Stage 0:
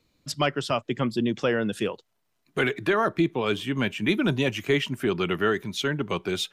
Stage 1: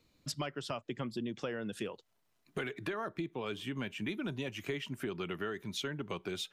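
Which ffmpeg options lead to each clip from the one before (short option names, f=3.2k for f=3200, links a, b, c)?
-af "acompressor=threshold=-34dB:ratio=5,volume=-2dB"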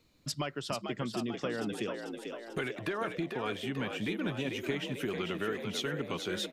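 -filter_complex "[0:a]asplit=8[a][b][c][d][e][f][g][h];[b]adelay=443,afreqshift=56,volume=-6dB[i];[c]adelay=886,afreqshift=112,volume=-11dB[j];[d]adelay=1329,afreqshift=168,volume=-16.1dB[k];[e]adelay=1772,afreqshift=224,volume=-21.1dB[l];[f]adelay=2215,afreqshift=280,volume=-26.1dB[m];[g]adelay=2658,afreqshift=336,volume=-31.2dB[n];[h]adelay=3101,afreqshift=392,volume=-36.2dB[o];[a][i][j][k][l][m][n][o]amix=inputs=8:normalize=0,volume=2.5dB"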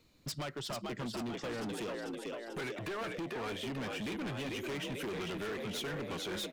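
-af "asoftclip=type=hard:threshold=-37dB,volume=1dB"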